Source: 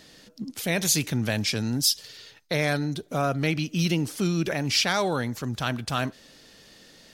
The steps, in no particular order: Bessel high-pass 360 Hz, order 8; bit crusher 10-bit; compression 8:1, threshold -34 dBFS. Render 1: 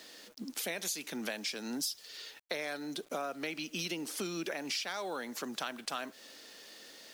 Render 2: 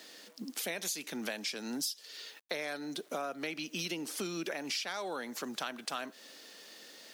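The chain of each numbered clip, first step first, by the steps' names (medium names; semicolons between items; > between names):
Bessel high-pass > compression > bit crusher; bit crusher > Bessel high-pass > compression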